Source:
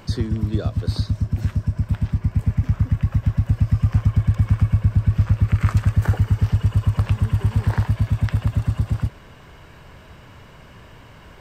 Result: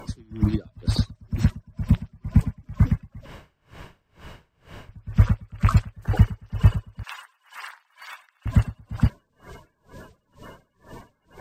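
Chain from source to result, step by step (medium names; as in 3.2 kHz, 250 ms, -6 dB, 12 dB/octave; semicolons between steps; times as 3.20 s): coarse spectral quantiser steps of 30 dB; 3.26–4.89 s: room tone; 7.03–8.46 s: high-pass 990 Hz 24 dB/octave; logarithmic tremolo 2.1 Hz, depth 32 dB; trim +4.5 dB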